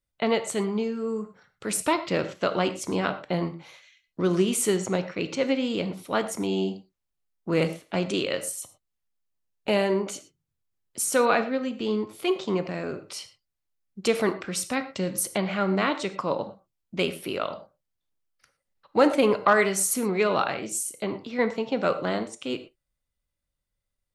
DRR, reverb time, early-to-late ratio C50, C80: 10.0 dB, no single decay rate, 12.5 dB, 15.0 dB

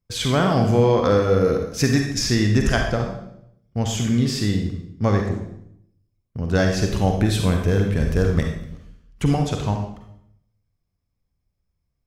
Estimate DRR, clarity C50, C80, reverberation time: 2.5 dB, 4.0 dB, 7.5 dB, 0.75 s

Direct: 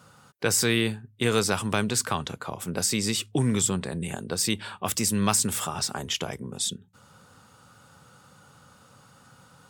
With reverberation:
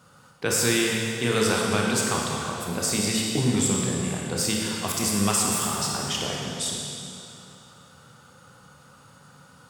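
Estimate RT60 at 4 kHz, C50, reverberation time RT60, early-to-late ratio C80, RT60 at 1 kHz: 2.6 s, -1.0 dB, 2.8 s, 0.0 dB, 2.8 s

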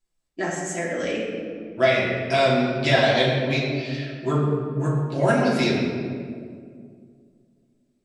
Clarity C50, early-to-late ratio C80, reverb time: 1.0 dB, 2.5 dB, 2.2 s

